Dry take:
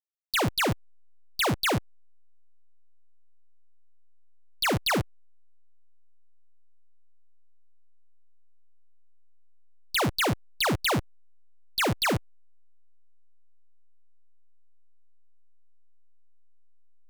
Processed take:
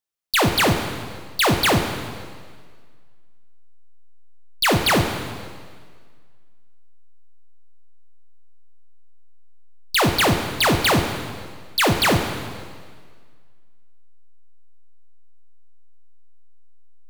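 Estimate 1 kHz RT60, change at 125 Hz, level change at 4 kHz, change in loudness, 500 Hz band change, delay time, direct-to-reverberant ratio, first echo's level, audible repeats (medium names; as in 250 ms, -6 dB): 1.7 s, +8.0 dB, +8.0 dB, +7.0 dB, +8.5 dB, no echo, 5.0 dB, no echo, no echo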